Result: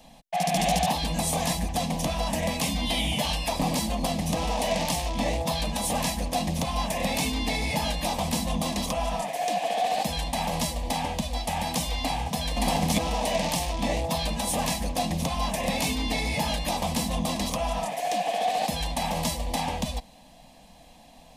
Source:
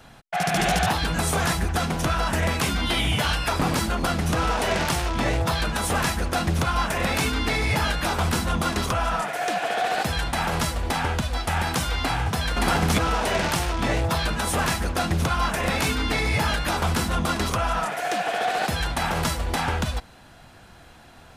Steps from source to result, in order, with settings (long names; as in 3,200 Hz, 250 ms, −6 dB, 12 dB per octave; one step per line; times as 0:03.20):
phaser with its sweep stopped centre 380 Hz, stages 6